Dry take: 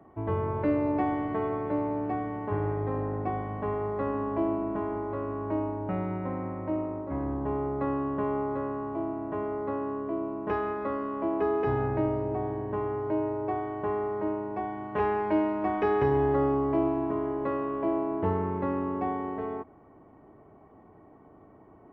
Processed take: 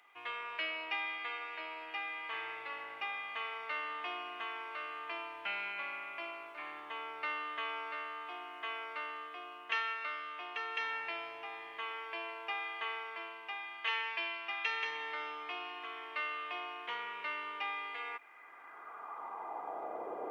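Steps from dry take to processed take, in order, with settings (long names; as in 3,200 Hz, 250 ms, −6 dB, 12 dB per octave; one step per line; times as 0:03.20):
high-pass filter sweep 2,600 Hz → 500 Hz, 0:19.40–0:21.71
speech leveller within 4 dB 2 s
speed change +8%
level +7.5 dB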